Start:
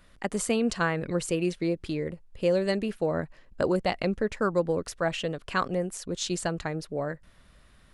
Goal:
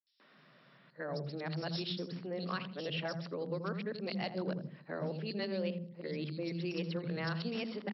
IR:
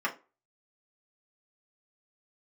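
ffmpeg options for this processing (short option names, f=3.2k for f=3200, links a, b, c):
-filter_complex "[0:a]areverse,acrossover=split=160|3000[a][b][c];[b]acompressor=threshold=-39dB:ratio=4[d];[a][d][c]amix=inputs=3:normalize=0,acrossover=split=230|4300[e][f][g];[f]adelay=130[h];[e]adelay=260[i];[i][h][g]amix=inputs=3:normalize=0,volume=28.5dB,asoftclip=hard,volume=-28.5dB,afftfilt=real='re*between(b*sr/4096,120,5600)':imag='im*between(b*sr/4096,120,5600)':win_size=4096:overlap=0.75,asplit=2[j][k];[k]adelay=82,lowpass=f=810:p=1,volume=-7.5dB,asplit=2[l][m];[m]adelay=82,lowpass=f=810:p=1,volume=0.42,asplit=2[n][o];[o]adelay=82,lowpass=f=810:p=1,volume=0.42,asplit=2[p][q];[q]adelay=82,lowpass=f=810:p=1,volume=0.42,asplit=2[r][s];[s]adelay=82,lowpass=f=810:p=1,volume=0.42[t];[l][n][p][r][t]amix=inputs=5:normalize=0[u];[j][u]amix=inputs=2:normalize=0"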